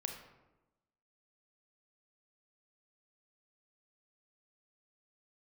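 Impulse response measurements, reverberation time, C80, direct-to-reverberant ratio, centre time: 1.0 s, 8.5 dB, 3.5 dB, 28 ms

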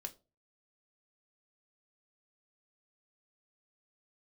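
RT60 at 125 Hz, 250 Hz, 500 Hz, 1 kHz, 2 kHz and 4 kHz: 0.50, 0.35, 0.35, 0.30, 0.20, 0.20 seconds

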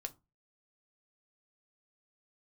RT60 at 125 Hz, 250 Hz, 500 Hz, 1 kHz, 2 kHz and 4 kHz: 0.40, 0.30, 0.25, 0.25, 0.20, 0.15 seconds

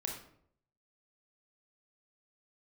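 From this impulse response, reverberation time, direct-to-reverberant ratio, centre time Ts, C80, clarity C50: 0.65 s, 0.5 dB, 31 ms, 8.5 dB, 4.5 dB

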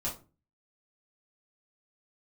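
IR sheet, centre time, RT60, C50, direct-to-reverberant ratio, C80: 24 ms, 0.35 s, 9.0 dB, −6.5 dB, 16.5 dB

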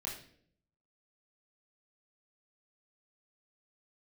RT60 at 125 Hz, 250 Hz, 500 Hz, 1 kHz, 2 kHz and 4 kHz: 0.95, 0.85, 0.70, 0.50, 0.55, 0.50 seconds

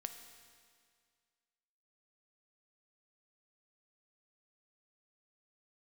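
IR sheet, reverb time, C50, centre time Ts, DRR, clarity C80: 2.0 s, 8.0 dB, 29 ms, 6.5 dB, 9.0 dB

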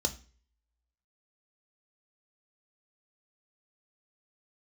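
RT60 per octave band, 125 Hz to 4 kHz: 0.55, 0.40, 0.45, 0.35, 0.40, 0.40 seconds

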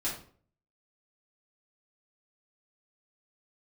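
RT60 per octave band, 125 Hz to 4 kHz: 0.70, 0.55, 0.50, 0.45, 0.40, 0.35 seconds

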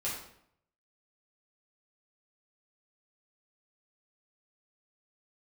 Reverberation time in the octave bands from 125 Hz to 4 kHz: 0.85, 0.75, 0.70, 0.65, 0.60, 0.55 seconds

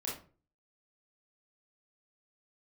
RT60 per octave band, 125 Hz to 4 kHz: 0.55, 0.45, 0.45, 0.35, 0.30, 0.25 seconds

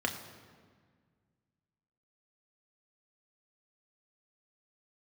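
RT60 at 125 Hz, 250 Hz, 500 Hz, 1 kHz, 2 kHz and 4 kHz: 2.5, 2.3, 1.8, 1.6, 1.5, 1.2 seconds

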